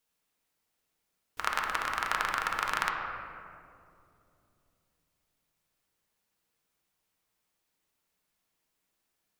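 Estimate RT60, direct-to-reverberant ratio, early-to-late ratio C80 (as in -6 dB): 2.5 s, -0.5 dB, 3.5 dB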